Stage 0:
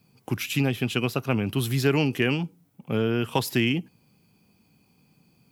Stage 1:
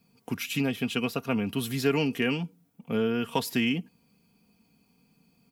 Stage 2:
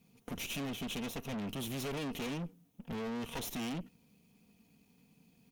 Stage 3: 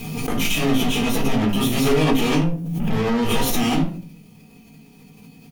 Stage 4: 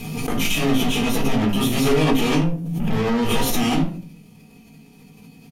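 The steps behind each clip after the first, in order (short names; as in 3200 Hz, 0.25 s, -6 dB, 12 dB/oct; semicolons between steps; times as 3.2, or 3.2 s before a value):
comb 4.3 ms, depth 53%; gain -4 dB
minimum comb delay 0.32 ms; tube stage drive 38 dB, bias 0.5; gain +1.5 dB
doubler 19 ms -6 dB; shoebox room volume 270 m³, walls furnished, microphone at 3.9 m; backwards sustainer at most 36 dB/s; gain +8.5 dB
downsampling 32000 Hz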